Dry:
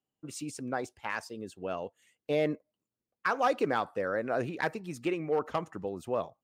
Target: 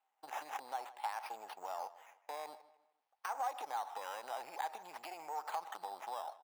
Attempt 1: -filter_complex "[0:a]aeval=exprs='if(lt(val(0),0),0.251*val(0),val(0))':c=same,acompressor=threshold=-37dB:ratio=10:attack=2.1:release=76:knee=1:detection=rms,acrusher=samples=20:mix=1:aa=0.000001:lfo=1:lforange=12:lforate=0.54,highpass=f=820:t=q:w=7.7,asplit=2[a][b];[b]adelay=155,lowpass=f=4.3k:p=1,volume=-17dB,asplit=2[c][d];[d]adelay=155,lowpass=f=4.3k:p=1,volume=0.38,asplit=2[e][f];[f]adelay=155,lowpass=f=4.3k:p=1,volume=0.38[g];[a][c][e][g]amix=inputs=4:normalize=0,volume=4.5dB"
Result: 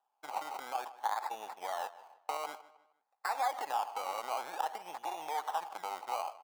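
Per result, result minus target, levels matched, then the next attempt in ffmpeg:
compressor: peak gain reduction -6 dB; decimation with a swept rate: distortion +6 dB
-filter_complex "[0:a]aeval=exprs='if(lt(val(0),0),0.251*val(0),val(0))':c=same,acompressor=threshold=-43.5dB:ratio=10:attack=2.1:release=76:knee=1:detection=rms,acrusher=samples=20:mix=1:aa=0.000001:lfo=1:lforange=12:lforate=0.54,highpass=f=820:t=q:w=7.7,asplit=2[a][b];[b]adelay=155,lowpass=f=4.3k:p=1,volume=-17dB,asplit=2[c][d];[d]adelay=155,lowpass=f=4.3k:p=1,volume=0.38,asplit=2[e][f];[f]adelay=155,lowpass=f=4.3k:p=1,volume=0.38[g];[a][c][e][g]amix=inputs=4:normalize=0,volume=4.5dB"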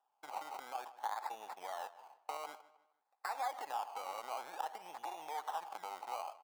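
decimation with a swept rate: distortion +6 dB
-filter_complex "[0:a]aeval=exprs='if(lt(val(0),0),0.251*val(0),val(0))':c=same,acompressor=threshold=-43.5dB:ratio=10:attack=2.1:release=76:knee=1:detection=rms,acrusher=samples=8:mix=1:aa=0.000001:lfo=1:lforange=4.8:lforate=0.54,highpass=f=820:t=q:w=7.7,asplit=2[a][b];[b]adelay=155,lowpass=f=4.3k:p=1,volume=-17dB,asplit=2[c][d];[d]adelay=155,lowpass=f=4.3k:p=1,volume=0.38,asplit=2[e][f];[f]adelay=155,lowpass=f=4.3k:p=1,volume=0.38[g];[a][c][e][g]amix=inputs=4:normalize=0,volume=4.5dB"

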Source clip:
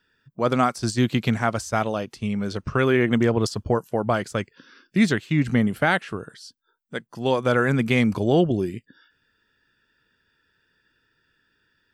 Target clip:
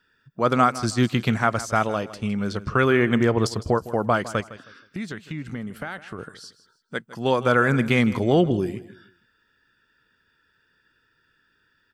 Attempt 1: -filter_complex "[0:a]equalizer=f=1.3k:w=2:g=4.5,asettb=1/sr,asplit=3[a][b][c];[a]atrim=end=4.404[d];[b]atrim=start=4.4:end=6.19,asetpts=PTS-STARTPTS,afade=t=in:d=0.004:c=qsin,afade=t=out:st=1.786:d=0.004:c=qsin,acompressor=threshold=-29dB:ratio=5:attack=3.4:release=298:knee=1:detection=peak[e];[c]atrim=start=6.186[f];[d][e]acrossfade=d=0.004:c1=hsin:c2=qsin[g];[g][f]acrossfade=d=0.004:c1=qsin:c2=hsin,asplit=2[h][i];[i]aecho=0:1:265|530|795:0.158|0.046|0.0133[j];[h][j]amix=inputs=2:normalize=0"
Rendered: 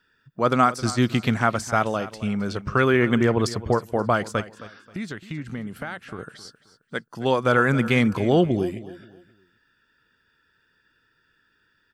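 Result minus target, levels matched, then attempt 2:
echo 0.107 s late
-filter_complex "[0:a]equalizer=f=1.3k:w=2:g=4.5,asettb=1/sr,asplit=3[a][b][c];[a]atrim=end=4.404[d];[b]atrim=start=4.4:end=6.19,asetpts=PTS-STARTPTS,afade=t=in:d=0.004:c=qsin,afade=t=out:st=1.786:d=0.004:c=qsin,acompressor=threshold=-29dB:ratio=5:attack=3.4:release=298:knee=1:detection=peak[e];[c]atrim=start=6.186[f];[d][e]acrossfade=d=0.004:c1=hsin:c2=qsin[g];[g][f]acrossfade=d=0.004:c1=qsin:c2=hsin,asplit=2[h][i];[i]aecho=0:1:158|316|474:0.158|0.046|0.0133[j];[h][j]amix=inputs=2:normalize=0"

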